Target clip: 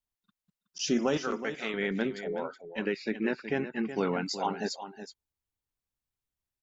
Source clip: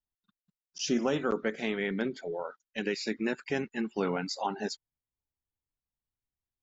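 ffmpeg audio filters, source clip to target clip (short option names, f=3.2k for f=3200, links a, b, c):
-filter_complex "[0:a]asettb=1/sr,asplit=3[a][b][c];[a]atrim=end=1.174[d];[b]atrim=start=1.17:end=1.74,asetpts=PTS-STARTPTS,afade=t=in:d=0.004:c=qsin,afade=t=out:st=0.566:d=0.004:c=qsin,lowshelf=f=470:g=-11.5[e];[c]atrim=start=1.736[f];[d][e]acrossfade=d=0.004:c1=hsin:c2=qsin[g];[g][f]acrossfade=d=0.004:c1=qsin:c2=hsin,asettb=1/sr,asplit=3[h][i][j];[h]atrim=end=2.244[k];[i]atrim=start=2.24:end=3.89,asetpts=PTS-STARTPTS,afade=t=in:d=0.004:c=qsin,afade=t=out:st=1.646:d=0.004:c=qsin,lowpass=2.8k[l];[j]atrim=start=3.886[m];[k][l]acrossfade=d=0.004:c1=hsin:c2=qsin[n];[n][m]acrossfade=d=0.004:c1=qsin:c2=hsin,aecho=1:1:371:0.282,volume=1dB"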